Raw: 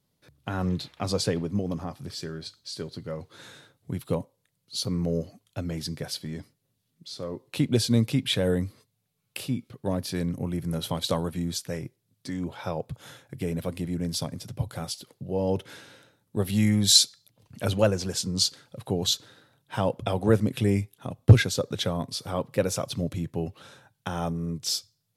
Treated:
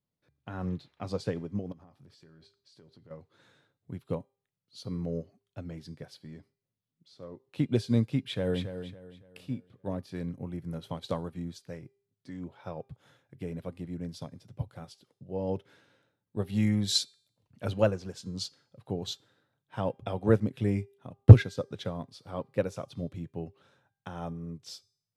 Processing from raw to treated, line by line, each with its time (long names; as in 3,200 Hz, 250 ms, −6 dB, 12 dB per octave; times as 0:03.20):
0:01.72–0:03.11: downward compressor 12 to 1, threshold −37 dBFS
0:08.21–0:08.66: delay throw 280 ms, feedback 45%, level −6.5 dB
whole clip: low-pass filter 2,700 Hz 6 dB per octave; hum removal 399 Hz, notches 33; expander for the loud parts 1.5 to 1, over −40 dBFS; level +3 dB